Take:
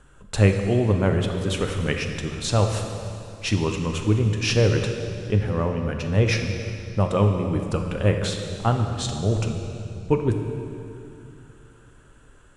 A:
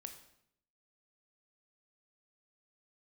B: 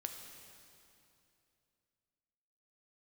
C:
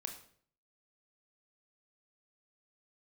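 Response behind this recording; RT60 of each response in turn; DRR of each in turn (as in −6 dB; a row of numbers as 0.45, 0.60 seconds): B; 0.70, 2.7, 0.55 seconds; 6.0, 4.0, 4.0 decibels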